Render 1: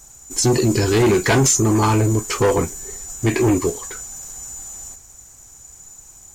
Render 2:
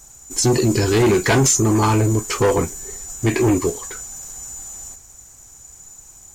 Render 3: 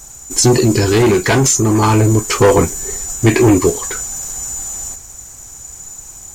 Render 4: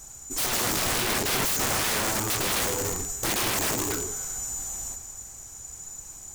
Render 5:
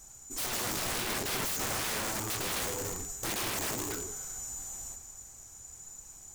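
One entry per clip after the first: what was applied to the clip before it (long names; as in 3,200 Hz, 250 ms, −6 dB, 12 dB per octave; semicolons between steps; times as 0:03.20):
no processing that can be heard
speech leveller within 4 dB 0.5 s; level +5.5 dB
reverb whose tail is shaped and stops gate 450 ms flat, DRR 10 dB; wrap-around overflow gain 12.5 dB; level −8.5 dB
flanger 0.99 Hz, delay 3.4 ms, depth 9.4 ms, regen −76%; level −3 dB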